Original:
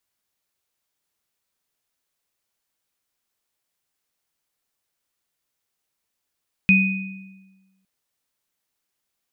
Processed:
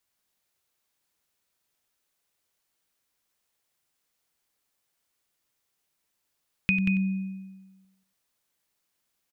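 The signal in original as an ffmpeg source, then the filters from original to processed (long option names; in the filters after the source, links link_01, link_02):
-f lavfi -i "aevalsrc='0.211*pow(10,-3*t/1.28)*sin(2*PI*191*t)+0.266*pow(10,-3*t/0.91)*sin(2*PI*2490*t)':duration=1.16:sample_rate=44100"
-filter_complex "[0:a]asplit=2[link_01][link_02];[link_02]aecho=0:1:95:0.398[link_03];[link_01][link_03]amix=inputs=2:normalize=0,acompressor=threshold=-23dB:ratio=4,asplit=2[link_04][link_05];[link_05]aecho=0:1:184:0.447[link_06];[link_04][link_06]amix=inputs=2:normalize=0"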